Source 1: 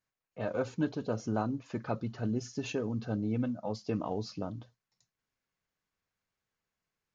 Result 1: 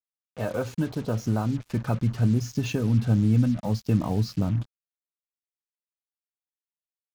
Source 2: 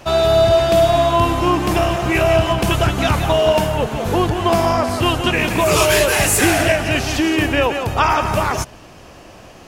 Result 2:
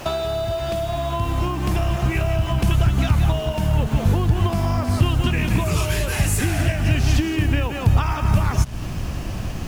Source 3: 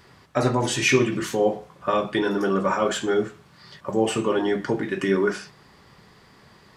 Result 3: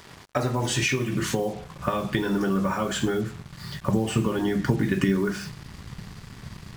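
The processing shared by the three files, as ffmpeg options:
-af "acompressor=threshold=0.0398:ratio=12,acrusher=bits=7:mix=0:aa=0.5,asubboost=boost=6:cutoff=190,volume=2"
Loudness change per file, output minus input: +9.5 LU, -5.5 LU, -2.5 LU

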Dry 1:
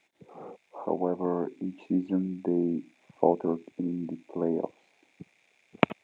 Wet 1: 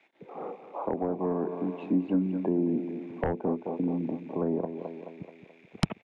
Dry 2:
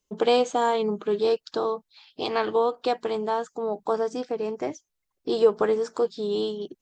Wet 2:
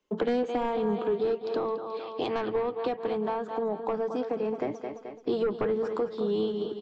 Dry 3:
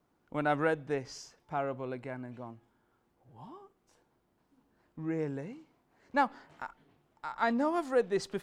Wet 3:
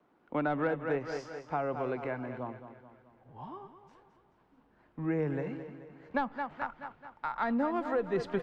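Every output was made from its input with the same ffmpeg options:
-filter_complex "[0:a]highshelf=f=6700:g=-9.5,aecho=1:1:215|430|645|860|1075:0.266|0.13|0.0639|0.0313|0.0153,asubboost=boost=5.5:cutoff=110,acrossover=split=180|3600[s0][s1][s2];[s1]aeval=exprs='0.562*sin(PI/2*3.16*val(0)/0.562)':c=same[s3];[s0][s3][s2]amix=inputs=3:normalize=0,acrossover=split=270[s4][s5];[s5]acompressor=threshold=0.0708:ratio=5[s6];[s4][s6]amix=inputs=2:normalize=0,volume=0.447"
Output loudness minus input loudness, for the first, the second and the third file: -0.5 LU, -4.0 LU, -1.0 LU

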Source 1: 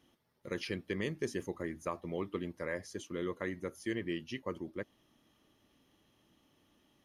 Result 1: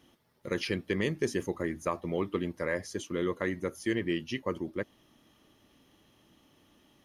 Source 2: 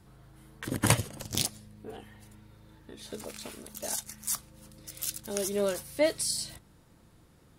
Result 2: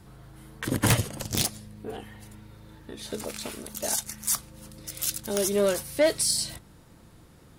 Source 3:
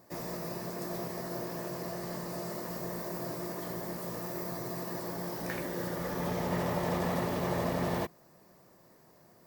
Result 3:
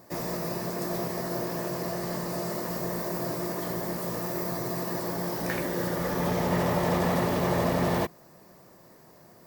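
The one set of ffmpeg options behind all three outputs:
-af "aeval=exprs='0.422*sin(PI/2*3.16*val(0)/0.422)':c=same,volume=0.422"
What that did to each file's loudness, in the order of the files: +6.0 LU, +4.5 LU, +6.0 LU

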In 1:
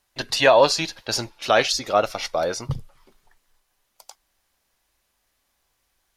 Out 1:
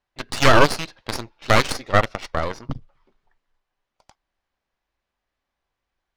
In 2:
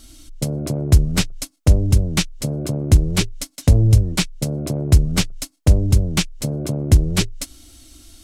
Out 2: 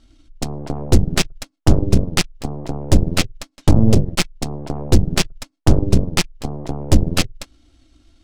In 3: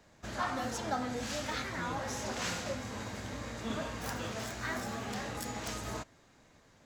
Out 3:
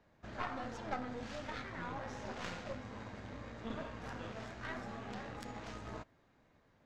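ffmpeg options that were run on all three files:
-af "aeval=exprs='0.891*(cos(1*acos(clip(val(0)/0.891,-1,1)))-cos(1*PI/2))+0.447*(cos(6*acos(clip(val(0)/0.891,-1,1)))-cos(6*PI/2))+0.0282*(cos(7*acos(clip(val(0)/0.891,-1,1)))-cos(7*PI/2))':c=same,adynamicsmooth=sensitivity=1.5:basefreq=3500,volume=0.631"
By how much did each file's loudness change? +0.5 LU, -0.5 LU, -7.0 LU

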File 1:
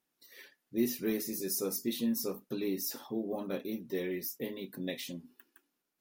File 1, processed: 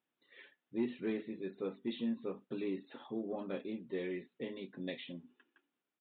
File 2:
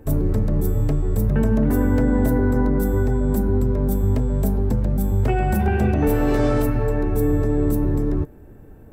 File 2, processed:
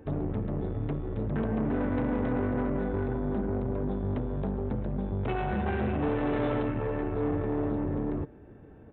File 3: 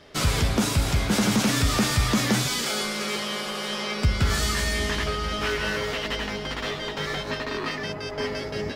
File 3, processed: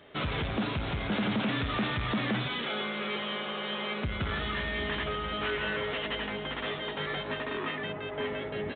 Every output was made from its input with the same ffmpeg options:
-af "aresample=8000,asoftclip=type=tanh:threshold=0.1,aresample=44100,highpass=f=110:p=1,volume=0.708"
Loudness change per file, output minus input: -5.5 LU, -10.0 LU, -7.0 LU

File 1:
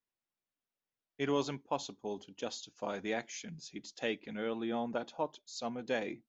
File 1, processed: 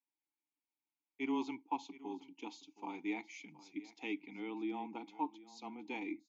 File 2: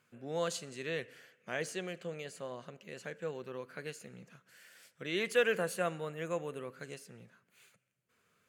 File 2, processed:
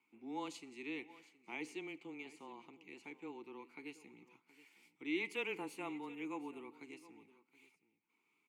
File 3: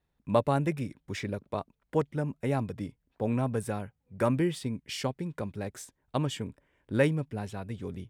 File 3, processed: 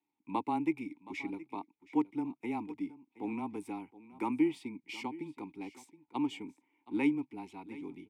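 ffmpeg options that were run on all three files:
-filter_complex "[0:a]afreqshift=-13,asplit=3[s0][s1][s2];[s0]bandpass=f=300:t=q:w=8,volume=1[s3];[s1]bandpass=f=870:t=q:w=8,volume=0.501[s4];[s2]bandpass=f=2240:t=q:w=8,volume=0.355[s5];[s3][s4][s5]amix=inputs=3:normalize=0,aemphasis=mode=production:type=bsi,asplit=2[s6][s7];[s7]aecho=0:1:721:0.126[s8];[s6][s8]amix=inputs=2:normalize=0,volume=2.82"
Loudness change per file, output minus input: -4.5 LU, -8.0 LU, -5.0 LU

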